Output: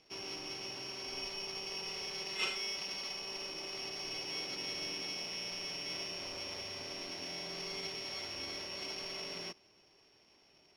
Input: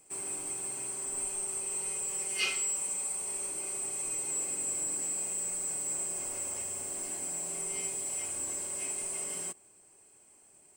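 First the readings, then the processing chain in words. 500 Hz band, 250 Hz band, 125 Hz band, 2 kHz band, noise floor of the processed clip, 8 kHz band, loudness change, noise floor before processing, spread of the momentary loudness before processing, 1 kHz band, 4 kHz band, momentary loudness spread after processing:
0.0 dB, 0.0 dB, 0.0 dB, -0.5 dB, -66 dBFS, -20.0 dB, -7.0 dB, -61 dBFS, 4 LU, 0.0 dB, +7.0 dB, 4 LU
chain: sorted samples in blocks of 8 samples; distance through air 120 m

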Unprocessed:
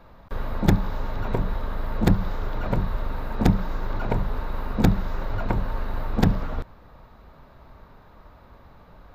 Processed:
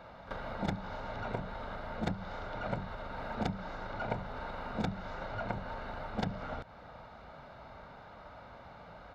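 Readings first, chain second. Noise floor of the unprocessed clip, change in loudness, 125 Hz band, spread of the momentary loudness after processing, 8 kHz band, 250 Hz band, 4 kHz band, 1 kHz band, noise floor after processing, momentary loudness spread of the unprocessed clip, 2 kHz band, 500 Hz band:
-51 dBFS, -12.5 dB, -15.5 dB, 14 LU, no reading, -14.0 dB, -7.5 dB, -6.5 dB, -52 dBFS, 10 LU, -5.5 dB, -8.0 dB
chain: low-pass 5.8 kHz 12 dB/octave; comb 1.4 ms, depth 43%; pre-echo 36 ms -14 dB; compression 6:1, threshold -27 dBFS, peak gain reduction 15.5 dB; high-pass 260 Hz 6 dB/octave; trim +2 dB

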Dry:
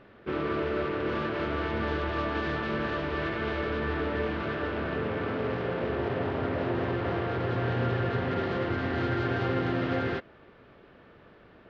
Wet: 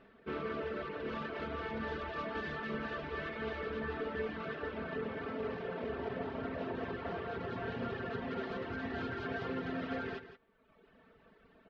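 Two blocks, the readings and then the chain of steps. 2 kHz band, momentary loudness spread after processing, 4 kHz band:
-8.0 dB, 2 LU, -9.0 dB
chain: reverb removal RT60 1.2 s; comb 4.5 ms, depth 57%; on a send: delay 169 ms -12 dB; on the sum: trim -7.5 dB

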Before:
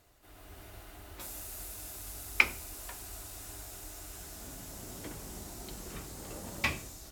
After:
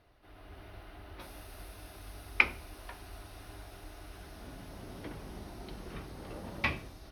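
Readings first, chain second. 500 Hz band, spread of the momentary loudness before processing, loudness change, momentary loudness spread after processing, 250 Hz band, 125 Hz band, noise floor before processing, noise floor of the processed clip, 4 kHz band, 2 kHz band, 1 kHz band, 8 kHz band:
+1.0 dB, 20 LU, 0.0 dB, 21 LU, +1.0 dB, +1.0 dB, -53 dBFS, -54 dBFS, -3.0 dB, -0.5 dB, +0.5 dB, -14.5 dB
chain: boxcar filter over 6 samples; trim +1 dB

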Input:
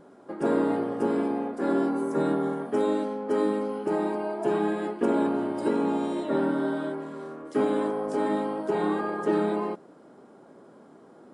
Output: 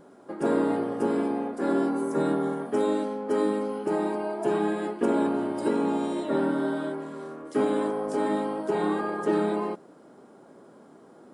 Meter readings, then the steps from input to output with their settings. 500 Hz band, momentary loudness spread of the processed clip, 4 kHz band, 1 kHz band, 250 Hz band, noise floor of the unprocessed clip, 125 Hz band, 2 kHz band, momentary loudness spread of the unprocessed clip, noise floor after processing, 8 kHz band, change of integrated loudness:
0.0 dB, 5 LU, +1.5 dB, 0.0 dB, 0.0 dB, -52 dBFS, 0.0 dB, +0.5 dB, 5 LU, -52 dBFS, no reading, 0.0 dB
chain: treble shelf 6.5 kHz +6 dB

